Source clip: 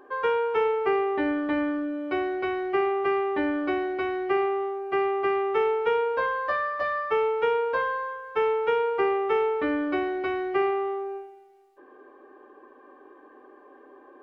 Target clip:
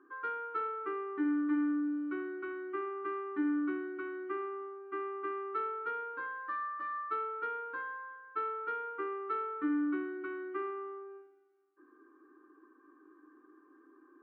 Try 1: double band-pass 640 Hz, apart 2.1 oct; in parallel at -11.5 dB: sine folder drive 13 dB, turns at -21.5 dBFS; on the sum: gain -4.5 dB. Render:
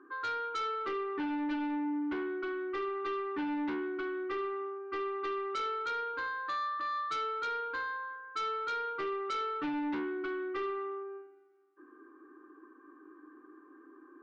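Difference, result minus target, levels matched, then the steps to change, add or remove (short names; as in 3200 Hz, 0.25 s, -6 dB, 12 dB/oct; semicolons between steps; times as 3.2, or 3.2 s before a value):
sine folder: distortion +23 dB
change: sine folder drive 2 dB, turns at -21.5 dBFS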